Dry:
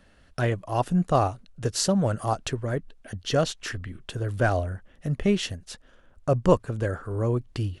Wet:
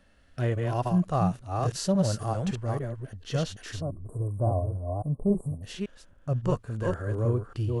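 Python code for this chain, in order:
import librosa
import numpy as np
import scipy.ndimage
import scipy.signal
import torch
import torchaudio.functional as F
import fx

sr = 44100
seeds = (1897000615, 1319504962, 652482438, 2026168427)

y = fx.reverse_delay(x, sr, ms=279, wet_db=-3)
y = fx.cheby1_bandstop(y, sr, low_hz=1100.0, high_hz=8300.0, order=5, at=(3.8, 5.62), fade=0.02)
y = fx.hpss(y, sr, part='percussive', gain_db=-11)
y = y * 10.0 ** (-1.0 / 20.0)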